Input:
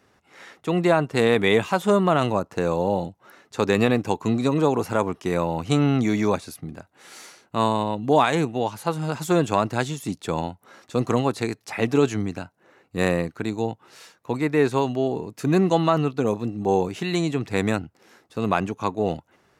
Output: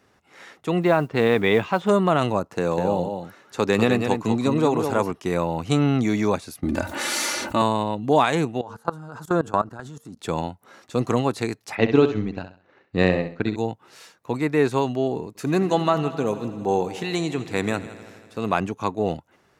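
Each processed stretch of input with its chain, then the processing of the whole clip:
0:00.81–0:01.89: low-pass filter 3,600 Hz + noise that follows the level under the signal 35 dB
0:02.51–0:05.11: high-pass filter 90 Hz + single-tap delay 199 ms −6.5 dB
0:06.63–0:07.62: comb filter 3.4 ms, depth 71% + envelope flattener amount 70%
0:08.61–0:10.18: high shelf with overshoot 1,800 Hz −6.5 dB, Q 3 + hum removal 229.5 Hz, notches 2 + output level in coarse steps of 19 dB
0:11.75–0:13.56: transient designer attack +5 dB, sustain −8 dB + low-pass filter 4,900 Hz 24 dB per octave + flutter between parallel walls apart 11.2 metres, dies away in 0.39 s
0:15.27–0:18.53: low-shelf EQ 240 Hz −5 dB + echo machine with several playback heads 81 ms, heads first and second, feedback 64%, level −18.5 dB
whole clip: no processing

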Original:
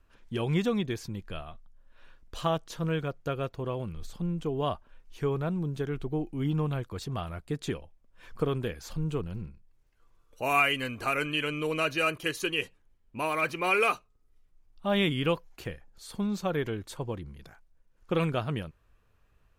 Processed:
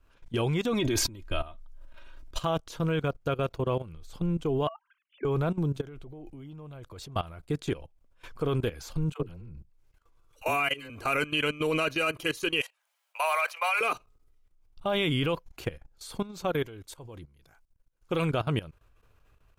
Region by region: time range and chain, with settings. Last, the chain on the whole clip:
0:00.73–0:02.40: comb filter 3.2 ms, depth 64% + level that may fall only so fast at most 35 dB per second
0:04.67–0:05.25: three sine waves on the formant tracks + downward compressor 10 to 1, threshold −31 dBFS
0:05.80–0:07.16: parametric band 590 Hz +6 dB 0.33 octaves + downward compressor 10 to 1, threshold −32 dBFS
0:09.12–0:10.90: downward compressor 2 to 1, threshold −33 dBFS + all-pass dispersion lows, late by 83 ms, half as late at 470 Hz
0:12.61–0:13.81: Butterworth high-pass 590 Hz 48 dB per octave + high-shelf EQ 9,200 Hz +2.5 dB + one half of a high-frequency compander encoder only
0:16.50–0:18.22: high-shelf EQ 4,800 Hz +7 dB + expander for the loud parts, over −40 dBFS
whole clip: parametric band 200 Hz −7.5 dB 0.29 octaves; notch filter 1,800 Hz, Q 12; output level in coarse steps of 17 dB; level +7.5 dB

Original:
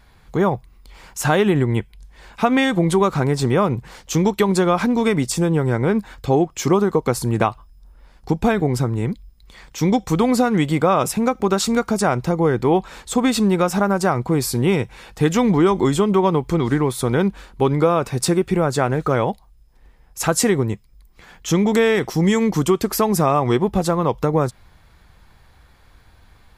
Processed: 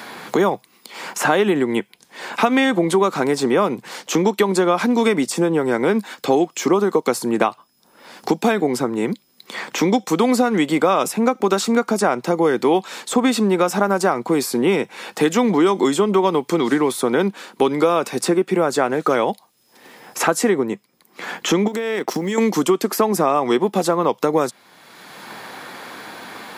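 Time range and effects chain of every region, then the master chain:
0:21.67–0:22.38: mu-law and A-law mismatch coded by A + downward compressor, threshold −25 dBFS + transient designer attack +5 dB, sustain −12 dB
whole clip: high-pass filter 220 Hz 24 dB per octave; multiband upward and downward compressor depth 70%; level +1.5 dB

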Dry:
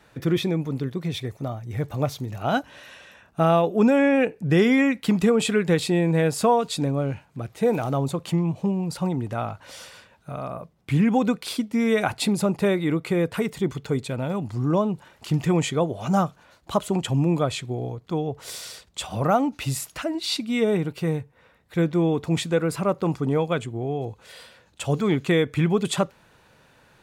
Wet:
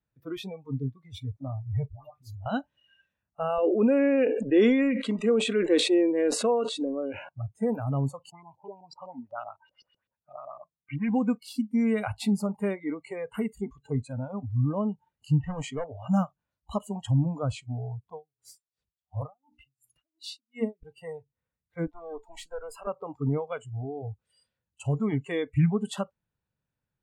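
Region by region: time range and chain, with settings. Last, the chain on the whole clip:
0:01.88–0:02.46: downward compressor 3 to 1, threshold −33 dBFS + all-pass dispersion highs, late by 143 ms, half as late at 890 Hz
0:03.58–0:07.29: loudspeaker in its box 290–8,500 Hz, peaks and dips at 340 Hz +10 dB, 520 Hz +7 dB, 850 Hz −7 dB, 3,200 Hz +6 dB, 5,000 Hz −7 dB, 7,100 Hz −4 dB + notch filter 3,100 Hz, Q 7.9 + level that may fall only so fast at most 48 dB per second
0:08.30–0:11.09: low-shelf EQ 320 Hz −10.5 dB + auto-filter low-pass saw up 7.9 Hz 340–5,200 Hz
0:15.40–0:16.08: low-pass that shuts in the quiet parts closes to 3,000 Hz, open at −16.5 dBFS + gain into a clipping stage and back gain 17.5 dB
0:18.13–0:20.83: mains-hum notches 60/120/180/240/300/360/420 Hz + tremolo with a sine in dB 2.8 Hz, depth 35 dB
0:21.87–0:22.87: Chebyshev high-pass filter 310 Hz, order 3 + tube saturation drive 22 dB, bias 0.35
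whole clip: noise reduction from a noise print of the clip's start 27 dB; bass and treble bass +13 dB, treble −2 dB; level −9 dB

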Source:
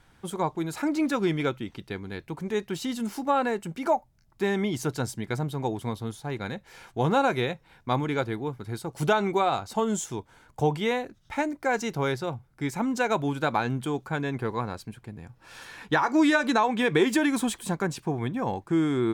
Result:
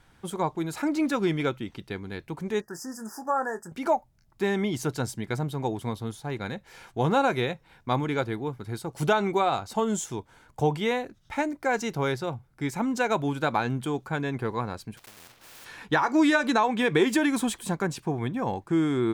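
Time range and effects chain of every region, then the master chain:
0:02.61–0:03.72: linear-phase brick-wall band-stop 1,900–4,700 Hz + low-shelf EQ 440 Hz −11.5 dB + double-tracking delay 23 ms −10.5 dB
0:14.97–0:15.66: one scale factor per block 3 bits + bass and treble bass −7 dB, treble −12 dB + every bin compressed towards the loudest bin 4 to 1
whole clip: no processing

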